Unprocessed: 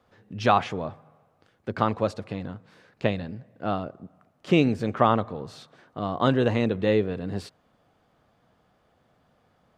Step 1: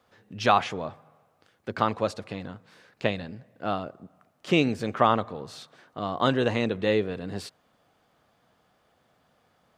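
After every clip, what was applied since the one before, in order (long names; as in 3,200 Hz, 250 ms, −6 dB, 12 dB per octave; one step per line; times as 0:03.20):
spectral tilt +1.5 dB per octave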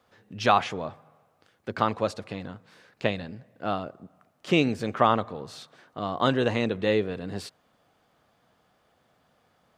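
no processing that can be heard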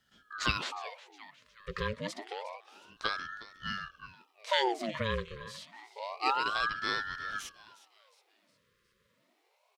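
echo with shifted repeats 361 ms, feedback 46%, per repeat +91 Hz, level −17 dB
brick-wall band-stop 290–1,300 Hz
ring modulator whose carrier an LFO sweeps 930 Hz, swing 70%, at 0.28 Hz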